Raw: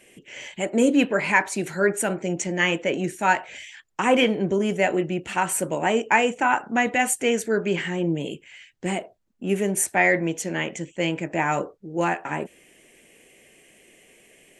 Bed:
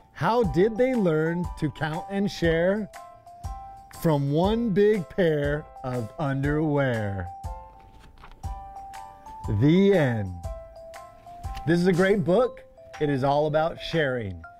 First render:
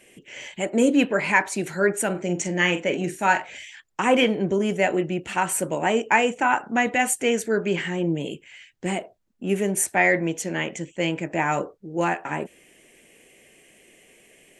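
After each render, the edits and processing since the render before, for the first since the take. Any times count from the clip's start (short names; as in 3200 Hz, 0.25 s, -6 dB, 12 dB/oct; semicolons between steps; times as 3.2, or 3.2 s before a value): 2.1–3.51 doubler 45 ms -10 dB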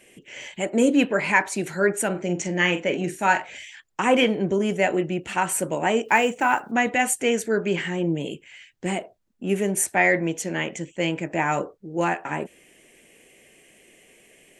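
2.08–3.08 LPF 7100 Hz; 6.04–6.72 block floating point 7-bit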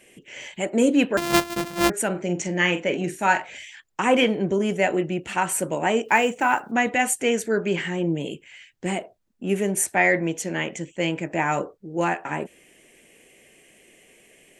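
1.17–1.9 sample sorter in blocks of 128 samples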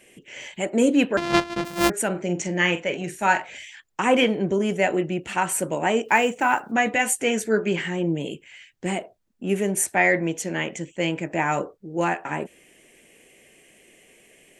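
1.16–1.65 LPF 4700 Hz; 2.75–3.22 bell 280 Hz -7 dB 1.2 oct; 6.68–7.72 doubler 14 ms -7.5 dB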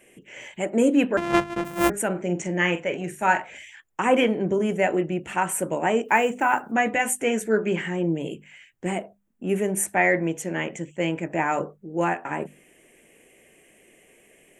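bell 4500 Hz -11.5 dB 0.98 oct; notches 50/100/150/200/250 Hz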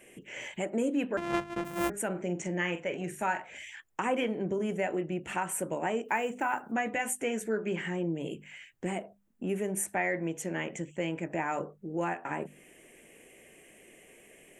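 compressor 2:1, threshold -35 dBFS, peak gain reduction 11.5 dB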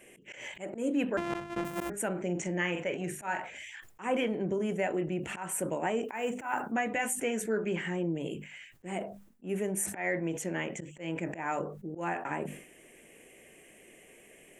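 auto swell 0.13 s; sustainer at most 91 dB/s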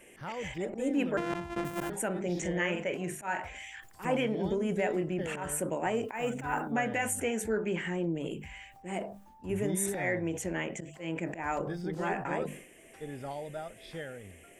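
add bed -17 dB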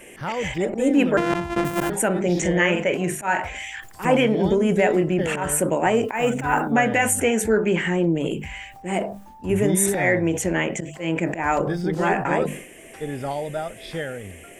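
gain +11.5 dB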